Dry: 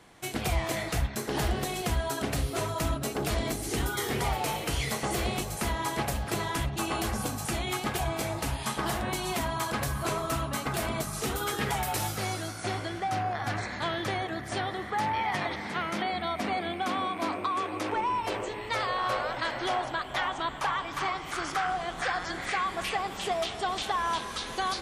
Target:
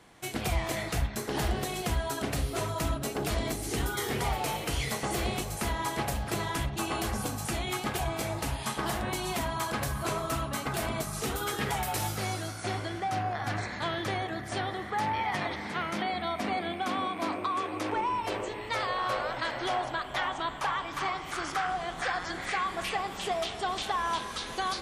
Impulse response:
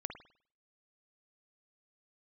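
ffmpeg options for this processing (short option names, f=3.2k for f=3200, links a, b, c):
-filter_complex "[0:a]asplit=2[a][b];[1:a]atrim=start_sample=2205,asetrate=57330,aresample=44100[c];[b][c]afir=irnorm=-1:irlink=0,volume=-5dB[d];[a][d]amix=inputs=2:normalize=0,volume=-3.5dB"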